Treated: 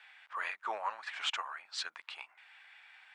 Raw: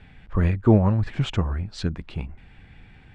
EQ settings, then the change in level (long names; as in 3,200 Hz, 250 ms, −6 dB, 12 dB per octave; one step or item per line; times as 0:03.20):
high-pass filter 950 Hz 24 dB per octave
0.0 dB